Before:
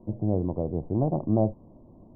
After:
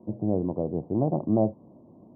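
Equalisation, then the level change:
high-pass filter 150 Hz 12 dB per octave
high-frequency loss of the air 480 metres
+2.5 dB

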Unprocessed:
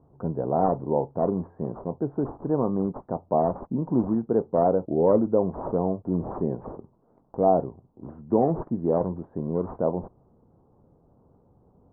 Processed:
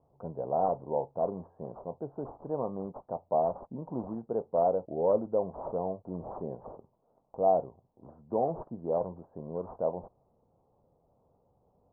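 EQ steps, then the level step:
low-pass filter 1,000 Hz 12 dB per octave
high-frequency loss of the air 240 metres
low shelf with overshoot 440 Hz −7.5 dB, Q 1.5
−4.0 dB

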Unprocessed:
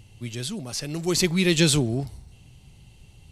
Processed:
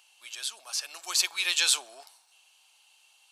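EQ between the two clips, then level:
high-pass filter 870 Hz 24 dB per octave
notch filter 2,000 Hz, Q 5.8
0.0 dB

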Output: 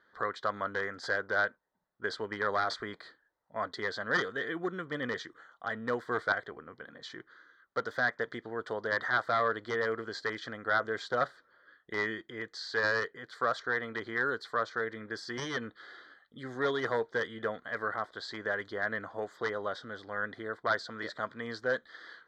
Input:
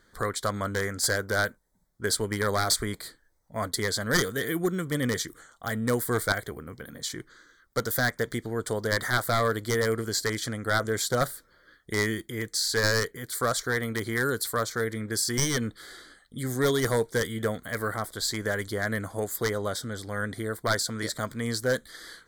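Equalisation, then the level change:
resonant band-pass 1,500 Hz, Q 0.52
high-frequency loss of the air 200 metres
notch filter 2,200 Hz, Q 7.2
0.0 dB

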